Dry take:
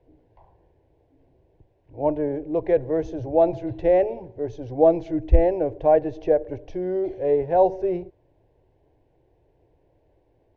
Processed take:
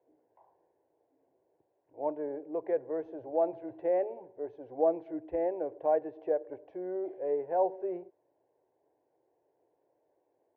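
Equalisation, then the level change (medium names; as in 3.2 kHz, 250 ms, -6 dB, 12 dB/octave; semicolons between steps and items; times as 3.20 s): high-pass 380 Hz 12 dB/octave; Chebyshev low-pass 1.3 kHz, order 2; dynamic bell 650 Hz, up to -3 dB, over -28 dBFS, Q 1.2; -6.5 dB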